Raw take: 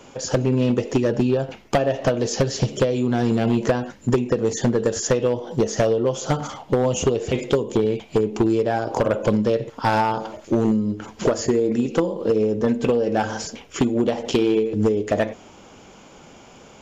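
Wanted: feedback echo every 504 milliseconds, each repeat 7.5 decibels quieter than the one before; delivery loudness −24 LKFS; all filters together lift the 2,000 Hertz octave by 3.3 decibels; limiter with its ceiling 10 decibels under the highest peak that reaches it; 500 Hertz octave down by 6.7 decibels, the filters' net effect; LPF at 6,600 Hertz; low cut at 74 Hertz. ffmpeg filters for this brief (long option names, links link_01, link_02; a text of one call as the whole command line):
ffmpeg -i in.wav -af "highpass=74,lowpass=6600,equalizer=frequency=500:width_type=o:gain=-8.5,equalizer=frequency=2000:width_type=o:gain=5,alimiter=limit=-16.5dB:level=0:latency=1,aecho=1:1:504|1008|1512|2016|2520:0.422|0.177|0.0744|0.0312|0.0131,volume=2.5dB" out.wav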